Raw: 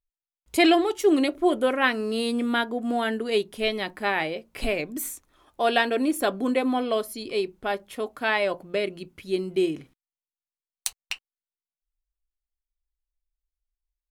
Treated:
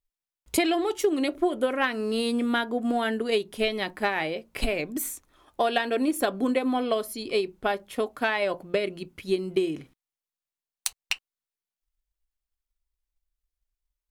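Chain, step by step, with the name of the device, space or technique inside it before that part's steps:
drum-bus smash (transient designer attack +6 dB, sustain +1 dB; downward compressor 6 to 1, threshold −20 dBFS, peak gain reduction 9.5 dB; soft clipping −7.5 dBFS, distortion −28 dB)

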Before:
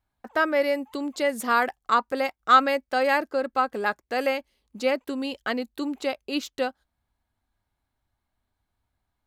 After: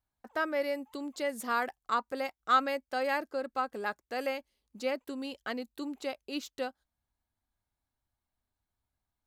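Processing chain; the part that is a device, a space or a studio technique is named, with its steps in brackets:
exciter from parts (in parallel at −5.5 dB: high-pass filter 3,600 Hz 12 dB per octave + soft clipping −38 dBFS, distortion −6 dB)
on the sum: level −8.5 dB

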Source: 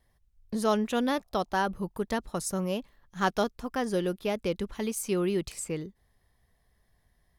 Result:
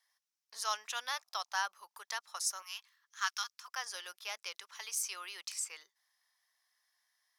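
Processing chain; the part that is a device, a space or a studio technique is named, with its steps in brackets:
0:02.62–0:03.68: high-pass filter 1,100 Hz 24 dB per octave
headphones lying on a table (high-pass filter 1,000 Hz 24 dB per octave; parametric band 5,600 Hz +10 dB 0.58 octaves)
level −3 dB

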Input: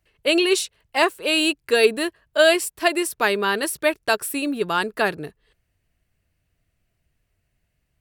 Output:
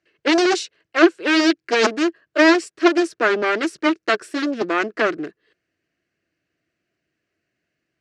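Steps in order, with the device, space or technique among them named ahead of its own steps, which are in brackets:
full-range speaker at full volume (highs frequency-modulated by the lows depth 0.94 ms; loudspeaker in its box 230–6,400 Hz, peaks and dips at 330 Hz +10 dB, 880 Hz −9 dB, 1,600 Hz +5 dB, 3,500 Hz −4 dB)
level +1 dB

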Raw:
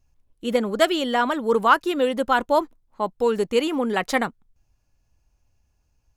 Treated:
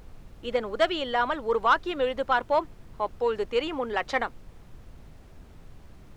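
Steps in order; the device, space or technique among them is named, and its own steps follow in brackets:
aircraft cabin announcement (band-pass filter 420–3,900 Hz; soft clipping −8.5 dBFS, distortion −19 dB; brown noise bed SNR 16 dB)
level −2.5 dB

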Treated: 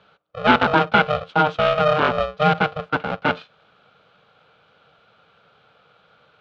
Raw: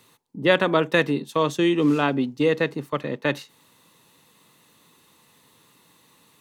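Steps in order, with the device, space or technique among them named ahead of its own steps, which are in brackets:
ring modulator pedal into a guitar cabinet (ring modulator with a square carrier 310 Hz; loudspeaker in its box 110–3,400 Hz, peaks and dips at 470 Hz +3 dB, 1,400 Hz +9 dB, 1,900 Hz −9 dB)
level +2.5 dB

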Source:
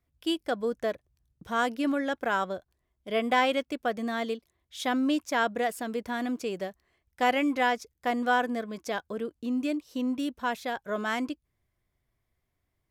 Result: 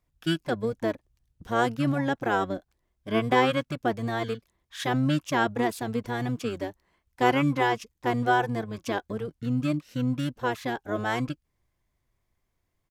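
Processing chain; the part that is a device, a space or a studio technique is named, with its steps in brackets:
octave pedal (pitch-shifted copies added −12 semitones −2 dB)

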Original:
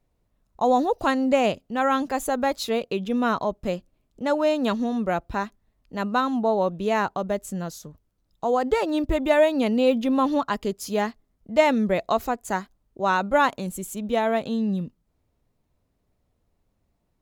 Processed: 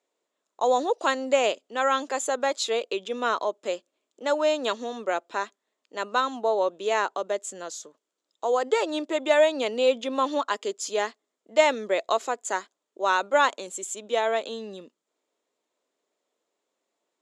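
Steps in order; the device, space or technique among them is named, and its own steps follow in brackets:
phone speaker on a table (loudspeaker in its box 360–8,700 Hz, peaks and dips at 770 Hz −4 dB, 3,400 Hz +5 dB, 7,200 Hz +9 dB)

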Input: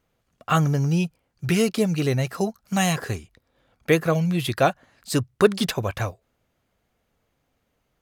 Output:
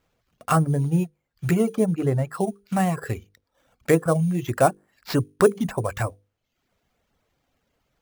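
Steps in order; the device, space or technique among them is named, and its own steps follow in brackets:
mains-hum notches 50/100/150/200/250/300/350/400/450/500 Hz
treble cut that deepens with the level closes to 1,300 Hz, closed at −21 dBFS
early companding sampler (sample-rate reduction 9,400 Hz, jitter 0%; log-companded quantiser 8 bits)
reverb reduction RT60 0.65 s
0:01.86–0:02.29: high-shelf EQ 4,400 Hz −8.5 dB
level +2 dB

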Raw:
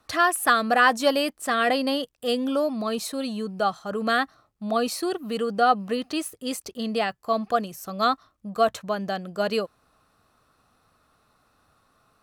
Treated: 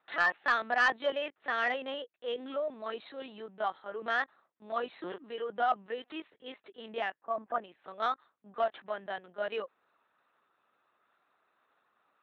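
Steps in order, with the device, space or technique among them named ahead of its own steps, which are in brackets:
talking toy (linear-prediction vocoder at 8 kHz pitch kept; high-pass filter 360 Hz 12 dB per octave; parametric band 1,800 Hz +6 dB 0.49 octaves; soft clipping −8.5 dBFS, distortion −18 dB)
0:07.21–0:07.64: low-pass filter 1,500 Hz 12 dB per octave
level −8.5 dB

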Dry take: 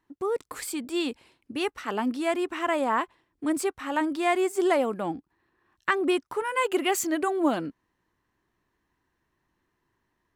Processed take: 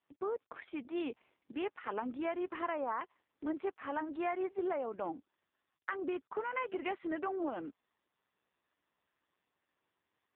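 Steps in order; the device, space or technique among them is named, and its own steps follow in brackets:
0:04.96–0:06.03: noise gate −58 dBFS, range −16 dB
voicemail (band-pass filter 320–2,700 Hz; downward compressor 12 to 1, threshold −27 dBFS, peak gain reduction 9 dB; level −4.5 dB; AMR narrowband 4.75 kbit/s 8,000 Hz)

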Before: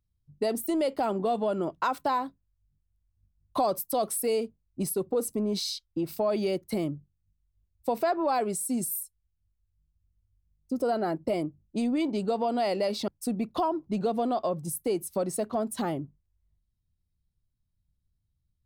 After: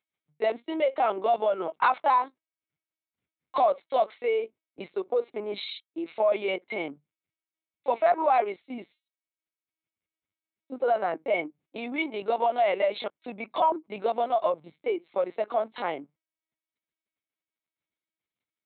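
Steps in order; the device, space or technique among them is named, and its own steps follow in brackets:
talking toy (linear-prediction vocoder at 8 kHz pitch kept; high-pass filter 550 Hz 12 dB per octave; parametric band 2,200 Hz +10 dB 0.21 octaves)
level +6 dB

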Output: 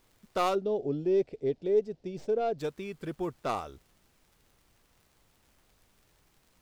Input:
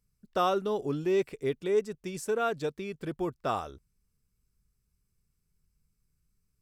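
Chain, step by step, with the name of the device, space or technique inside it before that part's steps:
record under a worn stylus (stylus tracing distortion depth 0.093 ms; surface crackle; pink noise bed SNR 33 dB)
0:00.55–0:02.59: drawn EQ curve 200 Hz 0 dB, 670 Hz +4 dB, 1,100 Hz −14 dB, 4,900 Hz −6 dB, 11,000 Hz −25 dB
level −1.5 dB

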